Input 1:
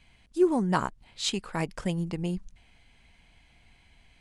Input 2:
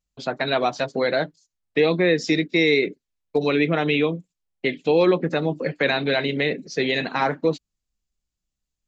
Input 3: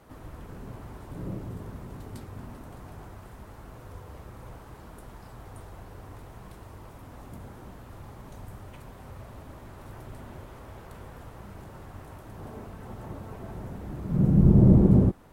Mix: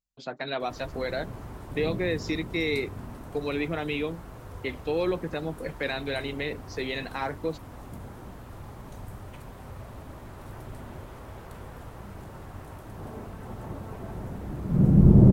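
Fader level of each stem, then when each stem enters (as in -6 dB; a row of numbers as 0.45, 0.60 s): off, -9.5 dB, +2.0 dB; off, 0.00 s, 0.60 s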